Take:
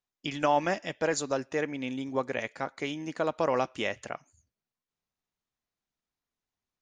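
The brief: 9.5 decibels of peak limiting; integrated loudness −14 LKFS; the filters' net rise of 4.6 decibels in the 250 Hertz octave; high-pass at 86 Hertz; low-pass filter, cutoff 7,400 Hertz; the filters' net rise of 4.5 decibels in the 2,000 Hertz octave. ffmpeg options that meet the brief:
ffmpeg -i in.wav -af "highpass=86,lowpass=7400,equalizer=frequency=250:width_type=o:gain=5.5,equalizer=frequency=2000:width_type=o:gain=5.5,volume=19.5dB,alimiter=limit=-1.5dB:level=0:latency=1" out.wav

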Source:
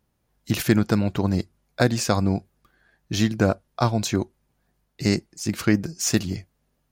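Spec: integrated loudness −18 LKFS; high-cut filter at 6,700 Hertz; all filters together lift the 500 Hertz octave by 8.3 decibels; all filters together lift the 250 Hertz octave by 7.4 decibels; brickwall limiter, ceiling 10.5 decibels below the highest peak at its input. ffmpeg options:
ffmpeg -i in.wav -af "lowpass=6700,equalizer=frequency=250:width_type=o:gain=7.5,equalizer=frequency=500:width_type=o:gain=8,volume=5dB,alimiter=limit=-4dB:level=0:latency=1" out.wav

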